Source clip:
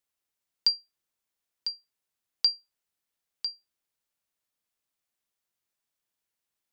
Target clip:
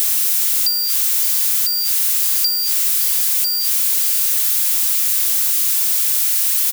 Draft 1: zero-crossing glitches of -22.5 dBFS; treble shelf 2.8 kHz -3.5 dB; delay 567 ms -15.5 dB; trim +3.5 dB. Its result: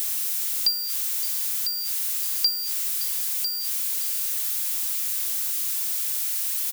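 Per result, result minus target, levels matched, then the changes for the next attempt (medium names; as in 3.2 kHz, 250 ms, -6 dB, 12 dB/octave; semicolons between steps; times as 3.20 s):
zero-crossing glitches: distortion -8 dB; 500 Hz band +4.0 dB
change: zero-crossing glitches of -12.5 dBFS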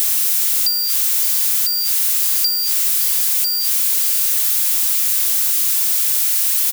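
500 Hz band +4.0 dB
add after zero-crossing glitches: high-pass 630 Hz 12 dB/octave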